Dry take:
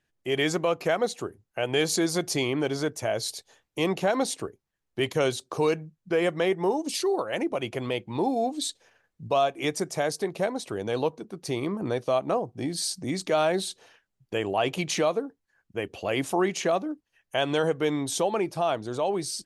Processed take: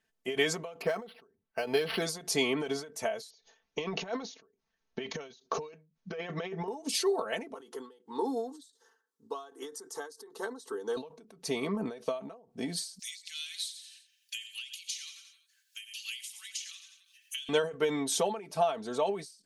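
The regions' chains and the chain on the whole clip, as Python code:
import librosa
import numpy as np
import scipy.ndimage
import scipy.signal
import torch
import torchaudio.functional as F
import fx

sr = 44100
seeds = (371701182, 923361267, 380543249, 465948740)

y = fx.chain(x, sr, fx.steep_lowpass(hz=5400.0, slope=36),
    fx.resample_linear(factor=6), at=(0.82, 2.02))
y = fx.chain(y, sr, fx.brickwall_lowpass(high_hz=6800.0),
    fx.over_compress(threshold_db=-29.0, ratio=-0.5), at=(3.3, 6.68))
y = fx.chain(y, sr, fx.highpass(hz=210.0, slope=12),
    fx.fixed_phaser(hz=640.0, stages=6), at=(7.54, 10.97))
y = fx.chain(y, sr, fx.cheby2_highpass(hz=700.0, order=4, stop_db=70),
    fx.echo_feedback(ms=87, feedback_pct=44, wet_db=-12.0),
    fx.band_squash(depth_pct=100), at=(12.99, 17.49))
y = fx.low_shelf(y, sr, hz=210.0, db=-7.5)
y = y + 0.76 * np.pad(y, (int(4.5 * sr / 1000.0), 0))[:len(y)]
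y = fx.end_taper(y, sr, db_per_s=120.0)
y = y * 10.0 ** (-2.0 / 20.0)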